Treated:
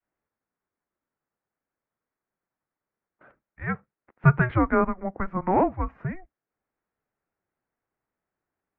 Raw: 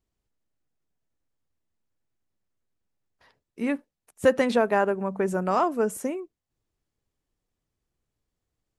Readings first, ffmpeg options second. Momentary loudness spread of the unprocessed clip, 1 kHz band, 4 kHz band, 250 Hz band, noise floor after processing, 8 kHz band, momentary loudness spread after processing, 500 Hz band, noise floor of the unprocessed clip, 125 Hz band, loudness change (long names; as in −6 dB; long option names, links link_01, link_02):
10 LU, +1.0 dB, below −15 dB, +1.0 dB, below −85 dBFS, below −35 dB, 14 LU, −5.0 dB, below −85 dBFS, +14.0 dB, 0.0 dB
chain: -af "adynamicequalizer=threshold=0.02:dfrequency=710:dqfactor=1:tfrequency=710:tqfactor=1:attack=5:release=100:ratio=0.375:range=3.5:mode=cutabove:tftype=bell,highpass=frequency=550:width_type=q:width=0.5412,highpass=frequency=550:width_type=q:width=1.307,lowpass=frequency=2400:width_type=q:width=0.5176,lowpass=frequency=2400:width_type=q:width=0.7071,lowpass=frequency=2400:width_type=q:width=1.932,afreqshift=-380,volume=6.5dB"